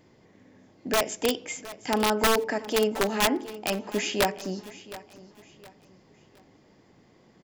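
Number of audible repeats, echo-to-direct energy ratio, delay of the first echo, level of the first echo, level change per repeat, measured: 2, -16.5 dB, 0.716 s, -17.0 dB, -9.5 dB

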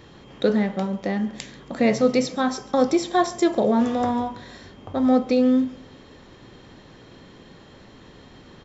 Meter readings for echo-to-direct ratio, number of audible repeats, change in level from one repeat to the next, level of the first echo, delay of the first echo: -21.0 dB, 2, -7.5 dB, -22.0 dB, 0.139 s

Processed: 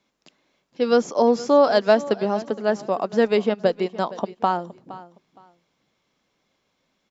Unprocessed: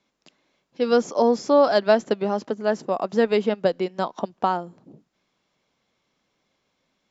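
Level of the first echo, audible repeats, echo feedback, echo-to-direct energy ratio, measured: -17.5 dB, 2, 23%, -17.5 dB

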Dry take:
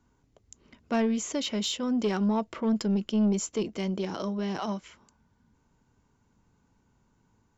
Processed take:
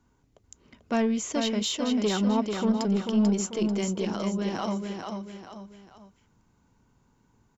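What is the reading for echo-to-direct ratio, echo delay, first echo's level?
-4.5 dB, 0.441 s, -5.0 dB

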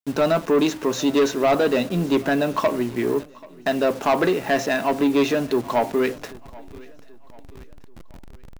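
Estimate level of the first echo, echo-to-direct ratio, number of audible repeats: -23.0 dB, -22.0 dB, 2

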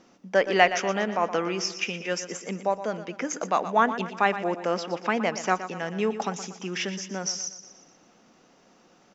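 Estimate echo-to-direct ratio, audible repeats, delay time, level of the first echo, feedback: -11.0 dB, 4, 0.119 s, -12.0 dB, 50%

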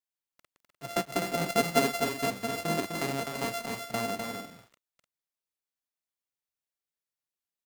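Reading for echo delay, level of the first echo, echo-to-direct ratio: 0.253 s, -5.0 dB, -4.0 dB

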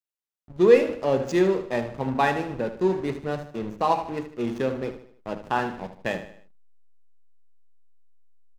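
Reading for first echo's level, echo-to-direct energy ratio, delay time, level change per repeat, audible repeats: -11.5 dB, -10.5 dB, 76 ms, -7.0 dB, 4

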